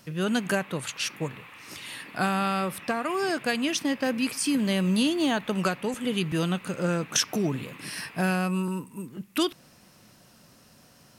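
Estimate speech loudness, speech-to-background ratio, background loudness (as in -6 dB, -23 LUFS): -27.5 LUFS, 17.5 dB, -45.0 LUFS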